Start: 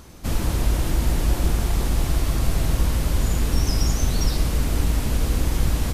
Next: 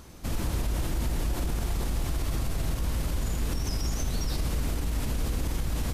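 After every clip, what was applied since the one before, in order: limiter -17 dBFS, peak gain reduction 8.5 dB; gain -3.5 dB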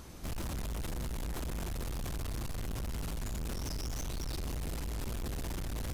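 hard clip -34 dBFS, distortion -7 dB; gain -1 dB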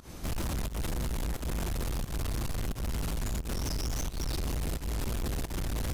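pump 88 bpm, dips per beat 1, -19 dB, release 0.134 s; gain +5 dB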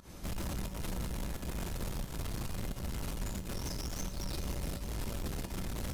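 resonator 190 Hz, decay 0.5 s, harmonics odd, mix 70%; on a send: echo with dull and thin repeats by turns 0.214 s, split 910 Hz, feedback 75%, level -10 dB; on the sum: gain +5 dB

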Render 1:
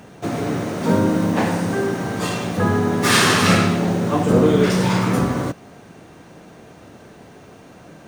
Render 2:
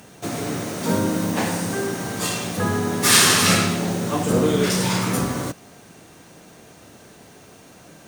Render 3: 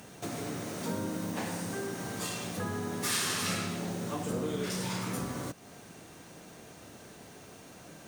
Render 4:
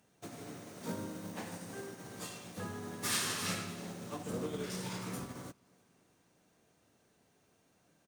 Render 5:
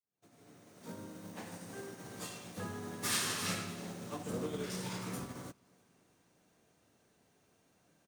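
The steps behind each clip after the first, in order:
bell 15000 Hz +14 dB 2.1 oct; gain -4.5 dB
compressor 2:1, threshold -35 dBFS, peak gain reduction 13.5 dB; gain -4 dB
in parallel at -4 dB: soft clip -33.5 dBFS, distortion -11 dB; on the sum: feedback echo 0.319 s, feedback 54%, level -15 dB; upward expander 2.5:1, over -41 dBFS; gain -4 dB
opening faded in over 2.08 s

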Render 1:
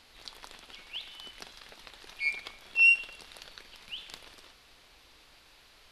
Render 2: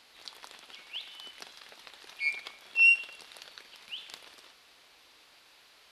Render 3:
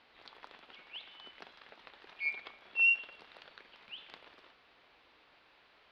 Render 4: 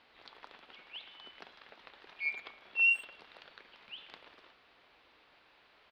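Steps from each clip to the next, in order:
HPF 360 Hz 6 dB/oct
air absorption 350 m
speakerphone echo 0.11 s, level -17 dB

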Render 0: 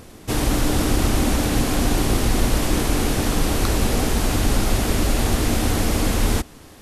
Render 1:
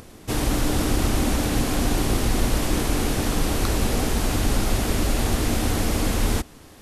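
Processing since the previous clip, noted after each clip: upward compressor, threshold -40 dBFS; gain -2.5 dB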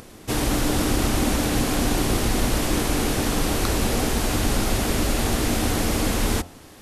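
low shelf 110 Hz -4.5 dB; de-hum 87.53 Hz, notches 15; gain +2 dB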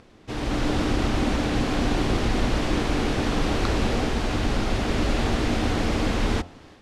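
AGC gain up to 10.5 dB; LPF 4200 Hz 12 dB/oct; gain -8 dB

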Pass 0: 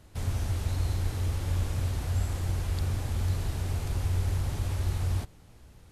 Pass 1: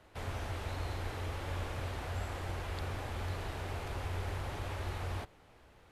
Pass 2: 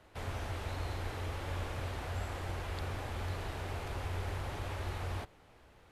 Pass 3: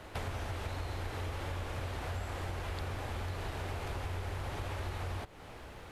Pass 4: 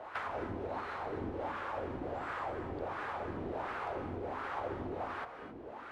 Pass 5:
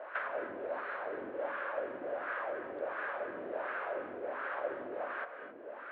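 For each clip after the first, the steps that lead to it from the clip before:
three-band isolator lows -13 dB, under 360 Hz, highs -13 dB, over 3400 Hz; gain +2 dB
nothing audible
compressor 6:1, threshold -48 dBFS, peak gain reduction 14 dB; gain +12 dB
octaver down 2 oct, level 0 dB; wah 1.4 Hz 270–1400 Hz, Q 2.5; on a send at -8.5 dB: reverb, pre-delay 3 ms; on the sum: gain +10 dB
speaker cabinet 360–3000 Hz, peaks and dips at 580 Hz +9 dB, 840 Hz -6 dB, 1600 Hz +8 dB; gain -1 dB

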